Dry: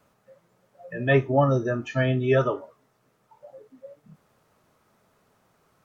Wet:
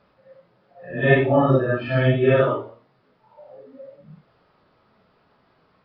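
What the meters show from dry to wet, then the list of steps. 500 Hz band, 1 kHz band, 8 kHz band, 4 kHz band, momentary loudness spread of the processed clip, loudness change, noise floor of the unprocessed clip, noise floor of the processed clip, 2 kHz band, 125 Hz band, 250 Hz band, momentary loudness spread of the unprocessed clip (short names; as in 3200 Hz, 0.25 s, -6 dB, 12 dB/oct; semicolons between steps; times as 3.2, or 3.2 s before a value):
+4.5 dB, +3.5 dB, n/a, +4.0 dB, 8 LU, +4.5 dB, -68 dBFS, -63 dBFS, +5.0 dB, +3.5 dB, +4.5 dB, 10 LU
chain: phase scrambler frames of 0.2 s; downsampling 11025 Hz; de-hum 115.8 Hz, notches 37; gain +4.5 dB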